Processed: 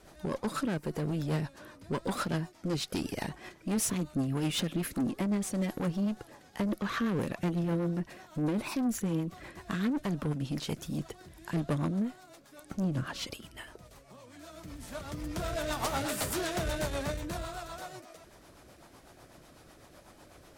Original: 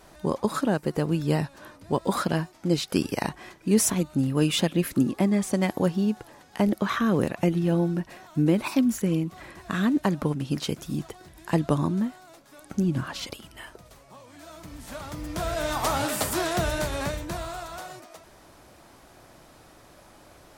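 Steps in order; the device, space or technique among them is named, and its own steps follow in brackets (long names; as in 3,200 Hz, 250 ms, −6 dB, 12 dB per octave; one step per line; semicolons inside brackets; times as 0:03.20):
overdriven rotary cabinet (tube saturation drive 25 dB, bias 0.3; rotating-speaker cabinet horn 8 Hz)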